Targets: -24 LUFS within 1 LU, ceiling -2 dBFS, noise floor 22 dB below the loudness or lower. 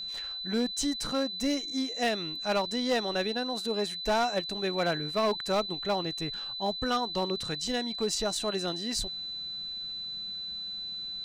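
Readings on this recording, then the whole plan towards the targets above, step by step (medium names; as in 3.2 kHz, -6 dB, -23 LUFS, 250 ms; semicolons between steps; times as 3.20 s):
clipped samples 0.9%; clipping level -21.5 dBFS; steady tone 4 kHz; tone level -35 dBFS; loudness -30.5 LUFS; peak level -21.5 dBFS; loudness target -24.0 LUFS
-> clip repair -21.5 dBFS; band-stop 4 kHz, Q 30; trim +6.5 dB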